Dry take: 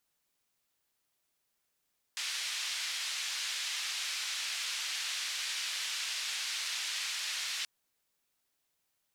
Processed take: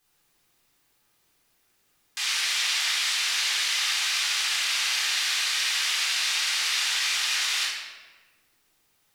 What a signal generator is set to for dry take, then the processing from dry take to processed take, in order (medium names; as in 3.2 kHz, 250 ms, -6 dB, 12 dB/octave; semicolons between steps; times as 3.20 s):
noise band 2.1–4.9 kHz, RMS -36.5 dBFS 5.48 s
in parallel at -0.5 dB: peak limiter -32 dBFS; on the sum: simulated room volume 1100 m³, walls mixed, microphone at 3.8 m